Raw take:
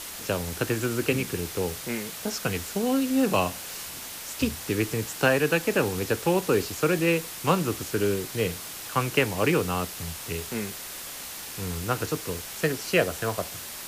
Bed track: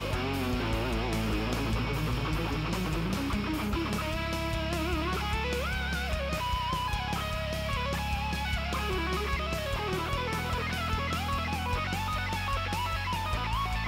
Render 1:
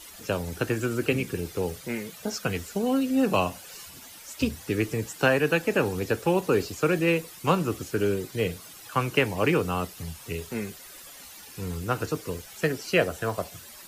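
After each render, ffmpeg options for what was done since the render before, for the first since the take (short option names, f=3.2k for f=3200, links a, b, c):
-af "afftdn=nr=12:nf=-39"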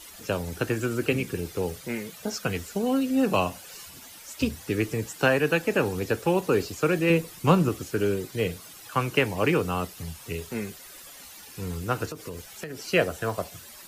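-filter_complex "[0:a]asettb=1/sr,asplit=3[a][b][c];[a]atrim=end=7.104[d];[b]atrim=start=7.1:end=7.69,asetpts=PTS-STARTPTS,afade=t=in:d=0.004:c=qsin,afade=t=out:st=0.586:d=0.004:c=qsin,lowshelf=f=340:g=7.5[e];[c]atrim=start=7.686[f];[d][e]acrossfade=d=0.004:c1=hsin:c2=qsin[g];[g][f]acrossfade=d=0.004:c1=qsin:c2=hsin,asettb=1/sr,asplit=3[h][i][j];[h]atrim=end=12.054[k];[i]atrim=start=12.05:end=12.79,asetpts=PTS-STARTPTS,afade=t=in:d=0.004:c=qsin,afade=t=out:st=0.736:d=0.004:c=qsin,acompressor=threshold=-31dB:ratio=16:attack=3.2:release=140:knee=1:detection=peak[l];[j]atrim=start=12.786[m];[k][l]acrossfade=d=0.004:c1=hsin:c2=qsin[n];[n][m]acrossfade=d=0.004:c1=qsin:c2=hsin"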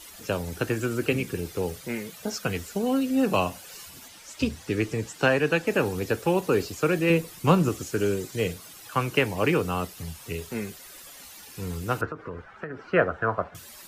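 -filter_complex "[0:a]asettb=1/sr,asplit=3[a][b][c];[a]atrim=end=4.084[d];[b]atrim=start=4.08:end=5.67,asetpts=PTS-STARTPTS,afade=t=in:d=0.004:c=qsin,afade=t=out:st=1.586:d=0.004:c=qsin,acrossover=split=9000[e][f];[f]acompressor=threshold=-58dB:ratio=4:attack=1:release=60[g];[e][g]amix=inputs=2:normalize=0[h];[c]atrim=start=5.666[i];[d][h]acrossfade=d=0.004:c1=hsin:c2=qsin[j];[j][i]acrossfade=d=0.004:c1=qsin:c2=hsin,asettb=1/sr,asplit=3[k][l][m];[k]atrim=end=7.634[n];[l]atrim=start=7.63:end=8.53,asetpts=PTS-STARTPTS,afade=t=in:d=0.004:c=qsin,afade=t=out:st=0.896:d=0.004:c=qsin,equalizer=f=6.9k:t=o:w=0.7:g=5.5[o];[m]atrim=start=8.526[p];[n][o]acrossfade=d=0.004:c1=hsin:c2=qsin[q];[q][p]acrossfade=d=0.004:c1=qsin:c2=hsin,asettb=1/sr,asplit=3[r][s][t];[r]atrim=end=12.014[u];[s]atrim=start=12.01:end=13.55,asetpts=PTS-STARTPTS,afade=t=in:d=0.004:c=qsin,afade=t=out:st=1.536:d=0.004:c=qsin,lowpass=f=1.4k:t=q:w=2.9[v];[t]atrim=start=13.546[w];[u][v]acrossfade=d=0.004:c1=hsin:c2=qsin[x];[x][w]acrossfade=d=0.004:c1=qsin:c2=hsin"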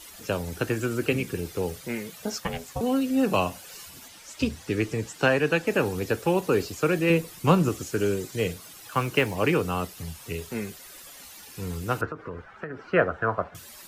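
-filter_complex "[0:a]asettb=1/sr,asplit=3[a][b][c];[a]atrim=end=2.404[d];[b]atrim=start=2.4:end=2.81,asetpts=PTS-STARTPTS,afade=t=in:d=0.004:c=qsin,afade=t=out:st=0.406:d=0.004:c=qsin,aeval=exprs='val(0)*sin(2*PI*330*n/s)':c=same[e];[c]atrim=start=2.806[f];[d][e]acrossfade=d=0.004:c1=hsin:c2=qsin[g];[g][f]acrossfade=d=0.004:c1=qsin:c2=hsin,asettb=1/sr,asplit=3[h][i][j];[h]atrim=end=8.774[k];[i]atrim=start=8.77:end=9.36,asetpts=PTS-STARTPTS,afade=t=in:d=0.004:c=qsin,afade=t=out:st=0.586:d=0.004:c=qsin,acrusher=bits=7:mode=log:mix=0:aa=0.000001[l];[j]atrim=start=9.356[m];[k][l]acrossfade=d=0.004:c1=hsin:c2=qsin[n];[n][m]acrossfade=d=0.004:c1=qsin:c2=hsin"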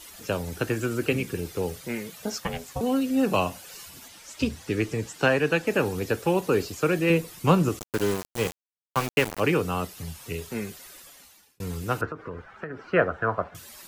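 -filter_complex "[0:a]asettb=1/sr,asplit=3[a][b][c];[a]atrim=end=7.794[d];[b]atrim=start=7.79:end=9.4,asetpts=PTS-STARTPTS,afade=t=in:d=0.004:c=qsin,afade=t=out:st=1.606:d=0.004:c=qsin,aeval=exprs='val(0)*gte(abs(val(0)),0.0473)':c=same[e];[c]atrim=start=9.396[f];[d][e]acrossfade=d=0.004:c1=hsin:c2=qsin[g];[g][f]acrossfade=d=0.004:c1=qsin:c2=hsin,asplit=2[h][i];[h]atrim=end=11.6,asetpts=PTS-STARTPTS,afade=t=out:st=10.84:d=0.76[j];[i]atrim=start=11.6,asetpts=PTS-STARTPTS,afade=t=in:d=0.004:c=hsin[k];[j][k]concat=n=2:v=0:a=1"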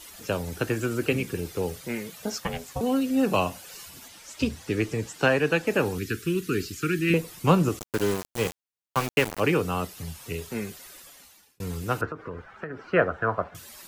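-filter_complex "[0:a]asettb=1/sr,asplit=3[a][b][c];[a]atrim=end=5.984[d];[b]atrim=start=5.98:end=7.14,asetpts=PTS-STARTPTS,afade=t=in:d=0.004:c=qsin,afade=t=out:st=1.156:d=0.004:c=qsin,asuperstop=centerf=720:order=8:qfactor=0.77[e];[c]atrim=start=7.136[f];[d][e]acrossfade=d=0.004:c1=hsin:c2=qsin[g];[g][f]acrossfade=d=0.004:c1=qsin:c2=hsin"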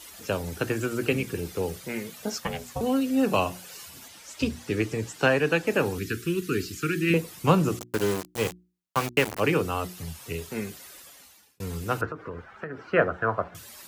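-af "highpass=42,bandreject=f=60:t=h:w=6,bandreject=f=120:t=h:w=6,bandreject=f=180:t=h:w=6,bandreject=f=240:t=h:w=6,bandreject=f=300:t=h:w=6,bandreject=f=360:t=h:w=6"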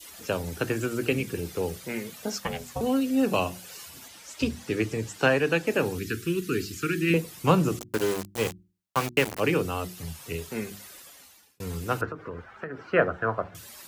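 -af "bandreject=f=50:t=h:w=6,bandreject=f=100:t=h:w=6,bandreject=f=150:t=h:w=6,bandreject=f=200:t=h:w=6,adynamicequalizer=threshold=0.0112:dfrequency=1100:dqfactor=0.89:tfrequency=1100:tqfactor=0.89:attack=5:release=100:ratio=0.375:range=2:mode=cutabove:tftype=bell"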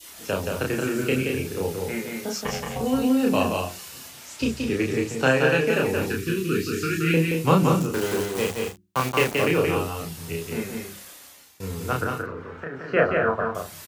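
-filter_complex "[0:a]asplit=2[a][b];[b]adelay=31,volume=-2dB[c];[a][c]amix=inputs=2:normalize=0,aecho=1:1:174.9|218.7:0.631|0.251"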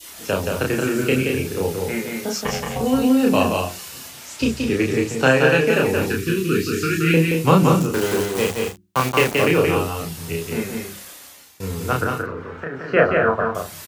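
-af "volume=4.5dB,alimiter=limit=-3dB:level=0:latency=1"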